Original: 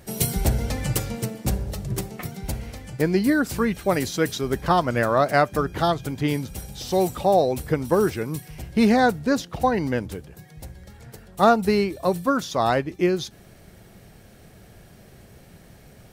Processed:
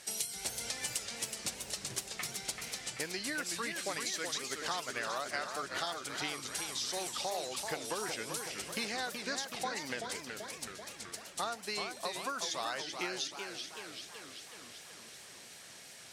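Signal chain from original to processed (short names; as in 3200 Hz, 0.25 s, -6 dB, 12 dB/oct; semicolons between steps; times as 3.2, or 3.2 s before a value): weighting filter ITU-R 468; compressor 6:1, threshold -31 dBFS, peak gain reduction 17.5 dB; warbling echo 0.38 s, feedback 64%, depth 195 cents, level -6 dB; gain -4.5 dB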